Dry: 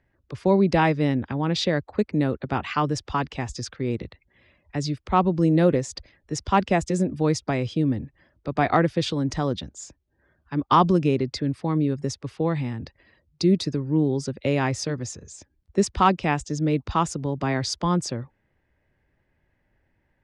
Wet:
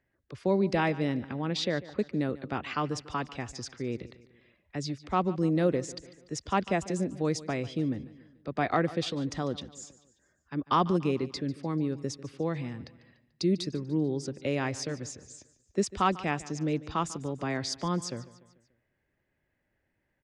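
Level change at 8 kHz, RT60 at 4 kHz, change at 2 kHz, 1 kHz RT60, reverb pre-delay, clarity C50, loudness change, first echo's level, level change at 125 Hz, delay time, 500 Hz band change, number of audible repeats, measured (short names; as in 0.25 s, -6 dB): -5.5 dB, none, -5.5 dB, none, none, none, -7.0 dB, -18.0 dB, -8.5 dB, 0.146 s, -6.0 dB, 3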